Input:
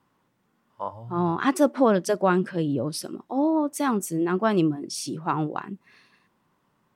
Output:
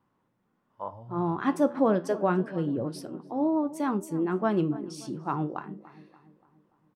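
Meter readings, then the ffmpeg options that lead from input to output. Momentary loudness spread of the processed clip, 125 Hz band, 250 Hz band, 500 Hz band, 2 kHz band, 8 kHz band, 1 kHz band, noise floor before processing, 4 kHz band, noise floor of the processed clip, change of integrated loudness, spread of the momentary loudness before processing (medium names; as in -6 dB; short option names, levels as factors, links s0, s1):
15 LU, -3.5 dB, -3.5 dB, -3.5 dB, -7.0 dB, -13.0 dB, -5.0 dB, -70 dBFS, -11.5 dB, -74 dBFS, -3.5 dB, 13 LU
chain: -filter_complex "[0:a]highshelf=f=2300:g=-10.5,flanger=delay=9.2:depth=5.5:regen=-73:speed=0.3:shape=sinusoidal,asplit=2[s0][s1];[s1]adelay=289,lowpass=f=1800:p=1,volume=0.141,asplit=2[s2][s3];[s3]adelay=289,lowpass=f=1800:p=1,volume=0.53,asplit=2[s4][s5];[s5]adelay=289,lowpass=f=1800:p=1,volume=0.53,asplit=2[s6][s7];[s7]adelay=289,lowpass=f=1800:p=1,volume=0.53,asplit=2[s8][s9];[s9]adelay=289,lowpass=f=1800:p=1,volume=0.53[s10];[s2][s4][s6][s8][s10]amix=inputs=5:normalize=0[s11];[s0][s11]amix=inputs=2:normalize=0,volume=1.12"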